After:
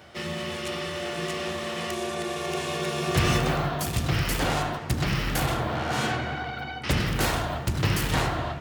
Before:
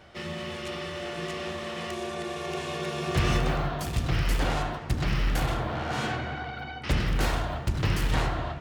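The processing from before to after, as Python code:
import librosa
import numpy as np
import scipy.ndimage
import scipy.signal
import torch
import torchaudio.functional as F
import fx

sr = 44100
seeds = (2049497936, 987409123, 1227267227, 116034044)

y = scipy.signal.sosfilt(scipy.signal.butter(2, 74.0, 'highpass', fs=sr, output='sos'), x)
y = fx.high_shelf(y, sr, hz=8000.0, db=9.0)
y = fx.quant_float(y, sr, bits=6)
y = y * 10.0 ** (3.0 / 20.0)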